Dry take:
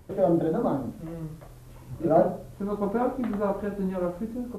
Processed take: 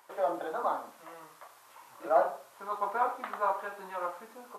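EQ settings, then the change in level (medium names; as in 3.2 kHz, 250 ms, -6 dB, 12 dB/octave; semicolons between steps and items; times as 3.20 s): resonant high-pass 1 kHz, resonance Q 2; 0.0 dB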